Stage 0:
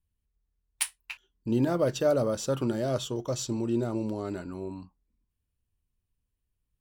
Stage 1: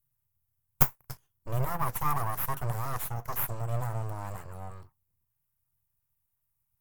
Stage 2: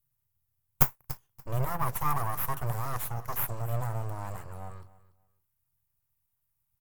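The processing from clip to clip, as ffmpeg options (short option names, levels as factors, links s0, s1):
-af "crystalizer=i=2:c=0,aeval=exprs='abs(val(0))':c=same,equalizer=f=125:t=o:w=1:g=12,equalizer=f=250:t=o:w=1:g=-10,equalizer=f=500:t=o:w=1:g=-3,equalizer=f=1000:t=o:w=1:g=7,equalizer=f=4000:t=o:w=1:g=-9,equalizer=f=8000:t=o:w=1:g=-3,equalizer=f=16000:t=o:w=1:g=11,volume=0.596"
-af "aecho=1:1:288|576:0.119|0.025"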